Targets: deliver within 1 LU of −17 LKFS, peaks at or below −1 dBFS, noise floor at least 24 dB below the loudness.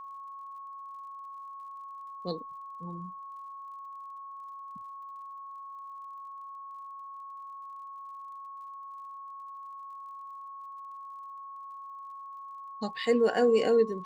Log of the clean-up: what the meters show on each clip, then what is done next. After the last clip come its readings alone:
crackle rate 45 per second; interfering tone 1,100 Hz; level of the tone −41 dBFS; integrated loudness −36.0 LKFS; sample peak −14.0 dBFS; target loudness −17.0 LKFS
→ click removal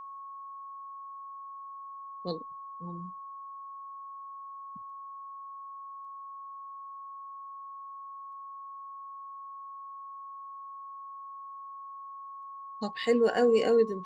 crackle rate 0.071 per second; interfering tone 1,100 Hz; level of the tone −41 dBFS
→ notch filter 1,100 Hz, Q 30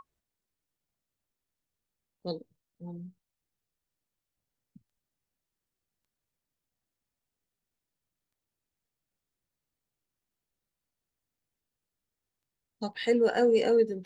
interfering tone none found; integrated loudness −26.5 LKFS; sample peak −14.5 dBFS; target loudness −17.0 LKFS
→ level +9.5 dB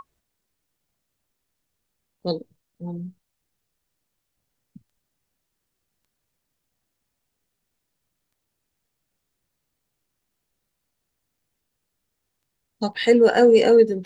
integrated loudness −17.5 LKFS; sample peak −5.0 dBFS; background noise floor −79 dBFS

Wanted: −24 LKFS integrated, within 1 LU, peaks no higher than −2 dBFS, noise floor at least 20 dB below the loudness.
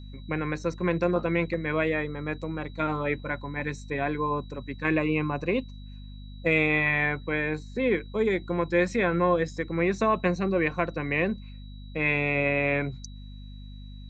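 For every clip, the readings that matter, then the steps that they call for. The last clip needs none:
mains hum 50 Hz; hum harmonics up to 250 Hz; level of the hum −40 dBFS; interfering tone 3,900 Hz; level of the tone −55 dBFS; integrated loudness −27.0 LKFS; sample peak −10.0 dBFS; target loudness −24.0 LKFS
→ hum removal 50 Hz, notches 5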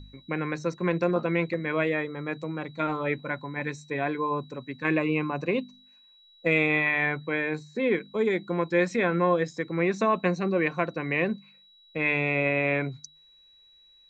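mains hum none found; interfering tone 3,900 Hz; level of the tone −55 dBFS
→ notch filter 3,900 Hz, Q 30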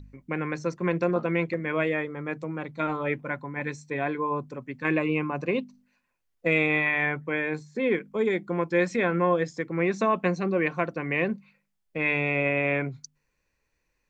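interfering tone none found; integrated loudness −27.0 LKFS; sample peak −10.5 dBFS; target loudness −24.0 LKFS
→ level +3 dB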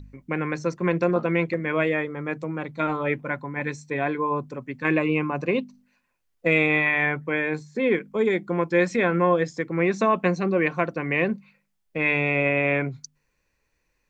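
integrated loudness −24.0 LKFS; sample peak −7.5 dBFS; background noise floor −74 dBFS

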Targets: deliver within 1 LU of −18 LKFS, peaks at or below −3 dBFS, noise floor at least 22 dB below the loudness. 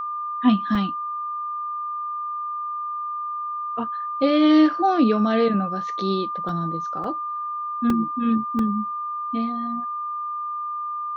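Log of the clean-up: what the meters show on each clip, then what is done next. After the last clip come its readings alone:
number of dropouts 5; longest dropout 2.5 ms; interfering tone 1,200 Hz; level of the tone −26 dBFS; integrated loudness −23.5 LKFS; sample peak −6.5 dBFS; target loudness −18.0 LKFS
→ repair the gap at 0:00.75/0:06.49/0:07.04/0:07.90/0:08.59, 2.5 ms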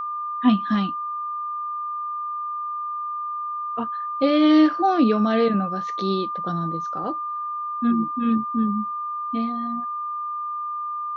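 number of dropouts 0; interfering tone 1,200 Hz; level of the tone −26 dBFS
→ notch filter 1,200 Hz, Q 30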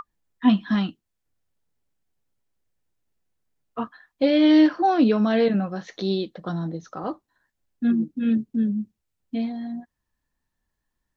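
interfering tone none found; integrated loudness −22.5 LKFS; sample peak −6.5 dBFS; target loudness −18.0 LKFS
→ level +4.5 dB
brickwall limiter −3 dBFS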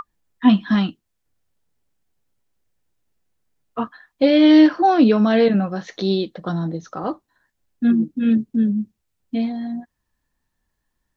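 integrated loudness −18.5 LKFS; sample peak −3.0 dBFS; background noise floor −76 dBFS

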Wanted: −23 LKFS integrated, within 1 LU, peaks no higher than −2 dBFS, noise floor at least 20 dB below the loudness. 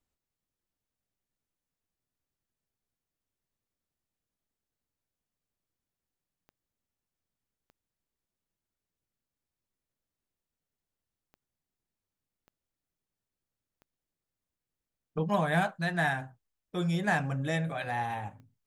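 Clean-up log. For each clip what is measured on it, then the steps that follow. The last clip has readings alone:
number of clicks 7; integrated loudness −31.0 LKFS; sample peak −15.0 dBFS; target loudness −23.0 LKFS
→ click removal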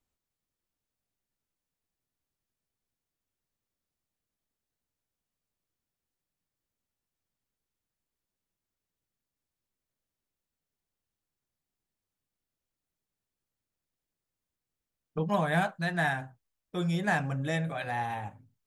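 number of clicks 0; integrated loudness −31.0 LKFS; sample peak −15.0 dBFS; target loudness −23.0 LKFS
→ level +8 dB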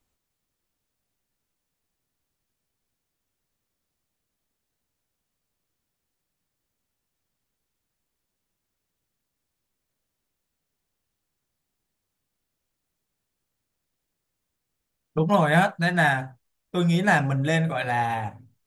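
integrated loudness −23.0 LKFS; sample peak −7.0 dBFS; background noise floor −82 dBFS

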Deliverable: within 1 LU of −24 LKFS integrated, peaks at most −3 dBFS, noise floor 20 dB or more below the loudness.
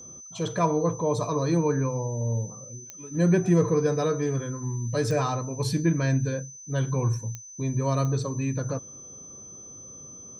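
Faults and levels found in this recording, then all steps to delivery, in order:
number of clicks 4; interfering tone 6,100 Hz; level of the tone −42 dBFS; integrated loudness −26.5 LKFS; sample peak −11.0 dBFS; target loudness −24.0 LKFS
→ click removal
notch filter 6,100 Hz, Q 30
level +2.5 dB

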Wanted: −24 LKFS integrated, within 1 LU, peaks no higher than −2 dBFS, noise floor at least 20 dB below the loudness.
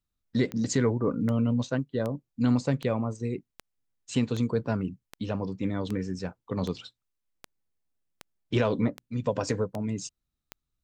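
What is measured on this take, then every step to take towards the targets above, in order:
number of clicks 14; integrated loudness −29.5 LKFS; sample peak −12.0 dBFS; target loudness −24.0 LKFS
→ click removal
level +5.5 dB

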